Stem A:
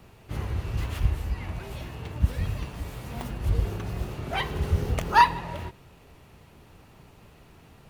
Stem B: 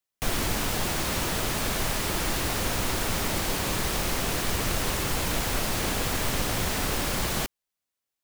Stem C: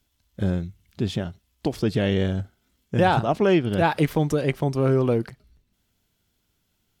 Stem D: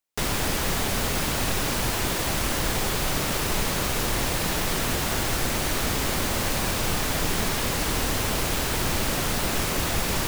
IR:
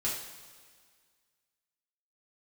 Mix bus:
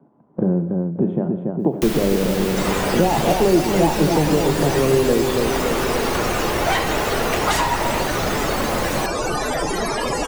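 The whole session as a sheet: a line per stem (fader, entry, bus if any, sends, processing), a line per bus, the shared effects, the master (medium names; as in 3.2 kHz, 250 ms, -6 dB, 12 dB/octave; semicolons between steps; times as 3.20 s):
-15.5 dB, 2.35 s, send -7 dB, no echo send, high-pass 490 Hz 24 dB/octave; sine folder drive 19 dB, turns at -4.5 dBFS
+0.5 dB, 1.60 s, no send, no echo send, peaking EQ 8.7 kHz -4 dB 1.7 oct
-1.0 dB, 0.00 s, send -10.5 dB, echo send -4 dB, elliptic band-pass 160–1000 Hz, stop band 60 dB; peaking EQ 340 Hz +5 dB 2.3 oct
+2.5 dB, 2.40 s, send -10 dB, no echo send, tone controls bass -10 dB, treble +5 dB; loudest bins only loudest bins 32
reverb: on, pre-delay 3 ms
echo: feedback delay 284 ms, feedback 58%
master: three bands compressed up and down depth 70%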